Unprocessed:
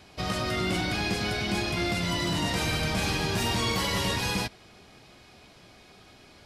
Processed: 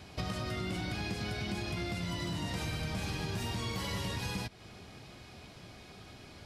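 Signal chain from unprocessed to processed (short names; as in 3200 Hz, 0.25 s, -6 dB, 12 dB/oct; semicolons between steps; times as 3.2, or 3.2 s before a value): bell 99 Hz +6.5 dB 2.1 oct; compressor 6:1, threshold -34 dBFS, peak gain reduction 12.5 dB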